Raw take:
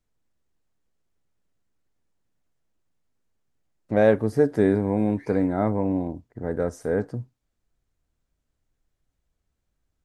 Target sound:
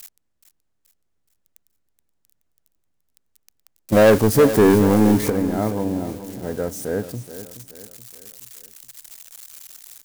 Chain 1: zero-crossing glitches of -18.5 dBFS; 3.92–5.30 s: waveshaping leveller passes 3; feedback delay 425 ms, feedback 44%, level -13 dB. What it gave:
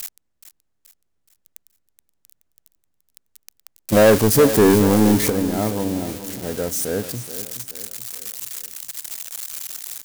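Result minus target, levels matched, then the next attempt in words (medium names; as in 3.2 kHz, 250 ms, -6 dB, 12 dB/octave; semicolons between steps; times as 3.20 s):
zero-crossing glitches: distortion +10 dB
zero-crossing glitches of -28.5 dBFS; 3.92–5.30 s: waveshaping leveller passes 3; feedback delay 425 ms, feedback 44%, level -13 dB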